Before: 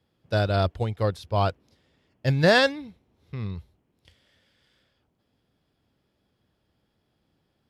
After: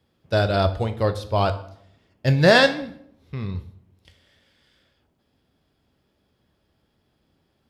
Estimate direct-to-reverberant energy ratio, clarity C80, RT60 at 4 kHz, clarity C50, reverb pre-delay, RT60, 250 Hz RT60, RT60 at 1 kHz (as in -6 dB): 8.0 dB, 17.5 dB, 0.50 s, 14.0 dB, 3 ms, 0.65 s, 0.80 s, 0.60 s